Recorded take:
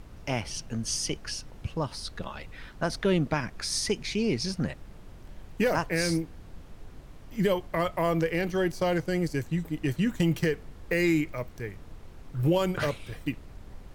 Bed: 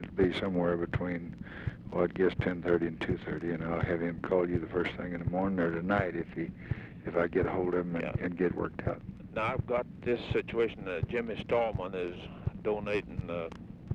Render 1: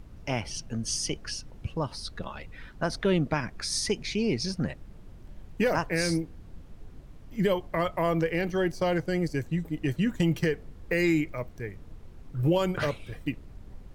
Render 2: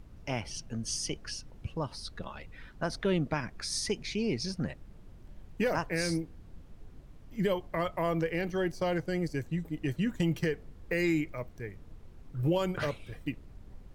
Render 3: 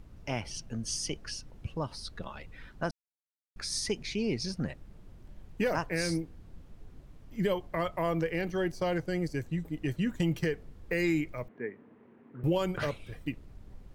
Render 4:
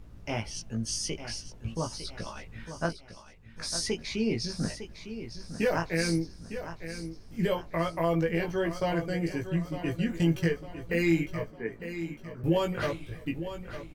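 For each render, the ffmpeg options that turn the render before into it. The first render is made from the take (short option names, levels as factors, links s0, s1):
-af "afftdn=nr=6:nf=-48"
-af "volume=0.631"
-filter_complex "[0:a]asettb=1/sr,asplit=3[s0][s1][s2];[s0]atrim=end=11.484[s3];[s1]atrim=start=11.48:end=12.44,asetpts=PTS-STARTPTS,afade=t=in:d=0.004:c=qsin,afade=t=out:st=0.956:d=0.004:c=qsin,highpass=f=160:w=0.5412,highpass=f=160:w=1.3066,equalizer=f=160:t=q:w=4:g=-7,equalizer=f=240:t=q:w=4:g=9,equalizer=f=420:t=q:w=4:g=7,equalizer=f=980:t=q:w=4:g=4,equalizer=f=1800:t=q:w=4:g=5,lowpass=f=2500:w=0.5412,lowpass=f=2500:w=1.3066[s4];[s2]atrim=start=12.436[s5];[s3][s4]acrossfade=d=0.004:c1=hsin:c2=qsin[s6];[s6][s5]acrossfade=d=0.004:c1=qsin:c2=hsin,asplit=3[s7][s8][s9];[s7]atrim=end=2.91,asetpts=PTS-STARTPTS,afade=t=out:st=2.906:d=0.004:c=hsin[s10];[s8]atrim=start=2.91:end=3.56,asetpts=PTS-STARTPTS,volume=0[s11];[s9]atrim=start=3.56,asetpts=PTS-STARTPTS,afade=t=in:d=0.004:c=hsin[s12];[s10][s11][s12]concat=n=3:v=0:a=1"
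-filter_complex "[0:a]asplit=2[s0][s1];[s1]adelay=18,volume=0.708[s2];[s0][s2]amix=inputs=2:normalize=0,aecho=1:1:905|1810|2715|3620:0.282|0.121|0.0521|0.0224"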